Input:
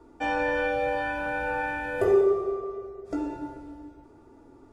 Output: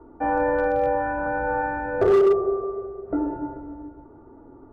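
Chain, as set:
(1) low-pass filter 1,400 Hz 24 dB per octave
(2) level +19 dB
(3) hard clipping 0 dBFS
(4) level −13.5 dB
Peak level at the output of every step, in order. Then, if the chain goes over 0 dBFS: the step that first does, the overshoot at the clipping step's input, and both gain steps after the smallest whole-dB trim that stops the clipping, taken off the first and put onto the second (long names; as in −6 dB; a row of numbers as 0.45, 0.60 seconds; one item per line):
−12.0, +7.0, 0.0, −13.5 dBFS
step 2, 7.0 dB
step 2 +12 dB, step 4 −6.5 dB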